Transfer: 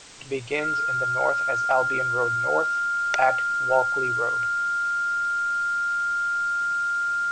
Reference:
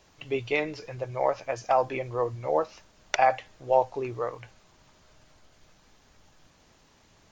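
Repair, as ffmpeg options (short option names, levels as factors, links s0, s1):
-af "bandreject=f=1400:w=30,afwtdn=0.0071"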